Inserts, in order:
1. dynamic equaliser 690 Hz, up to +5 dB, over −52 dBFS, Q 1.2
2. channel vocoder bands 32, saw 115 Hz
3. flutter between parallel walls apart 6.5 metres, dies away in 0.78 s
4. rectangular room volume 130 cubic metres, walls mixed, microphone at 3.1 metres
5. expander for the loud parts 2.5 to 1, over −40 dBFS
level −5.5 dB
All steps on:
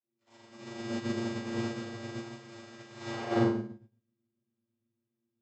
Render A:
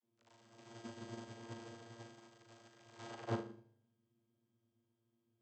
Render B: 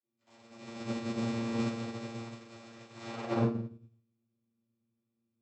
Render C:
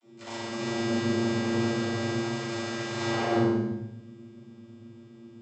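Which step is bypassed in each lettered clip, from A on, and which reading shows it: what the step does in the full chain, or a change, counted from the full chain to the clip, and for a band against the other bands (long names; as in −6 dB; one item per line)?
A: 4, change in integrated loudness −14.0 LU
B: 3, change in crest factor −2.5 dB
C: 5, change in crest factor −6.0 dB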